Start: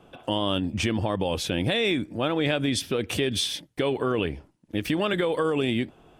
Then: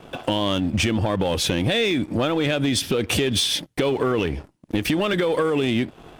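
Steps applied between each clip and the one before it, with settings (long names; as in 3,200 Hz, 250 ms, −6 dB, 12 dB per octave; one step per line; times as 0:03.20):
downward compressor 6 to 1, threshold −30 dBFS, peak gain reduction 10 dB
leveller curve on the samples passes 2
level +5.5 dB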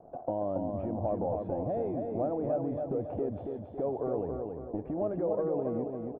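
transistor ladder low-pass 770 Hz, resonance 65%
repeating echo 277 ms, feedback 47%, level −4.5 dB
level −3.5 dB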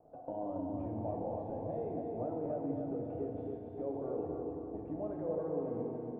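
flanger 0.45 Hz, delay 2.3 ms, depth 8.5 ms, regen −84%
feedback delay network reverb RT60 3 s, high-frequency decay 0.85×, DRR −0.5 dB
level −5 dB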